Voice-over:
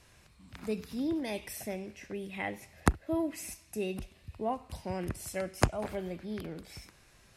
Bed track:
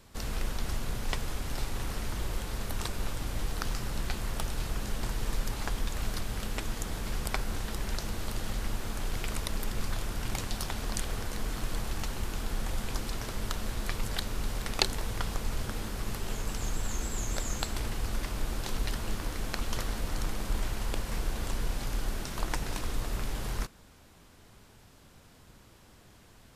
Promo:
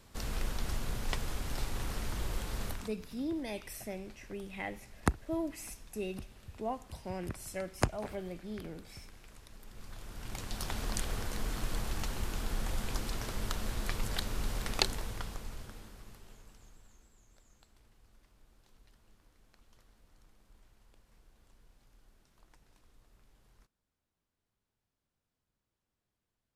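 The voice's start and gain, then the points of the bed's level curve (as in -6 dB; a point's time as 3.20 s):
2.20 s, -3.5 dB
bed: 2.69 s -2.5 dB
2.96 s -22 dB
9.47 s -22 dB
10.73 s -2 dB
14.79 s -2 dB
17.19 s -31.5 dB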